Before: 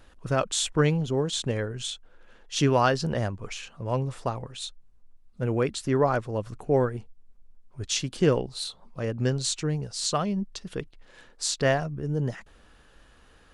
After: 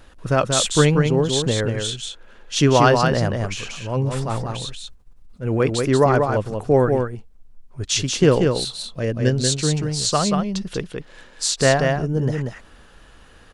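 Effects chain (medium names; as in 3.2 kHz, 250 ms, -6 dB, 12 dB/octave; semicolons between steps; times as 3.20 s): 3.53–5.60 s: transient shaper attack -10 dB, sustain +6 dB; 8.75–9.43 s: time-frequency box 690–1500 Hz -6 dB; delay 185 ms -4.5 dB; trim +6.5 dB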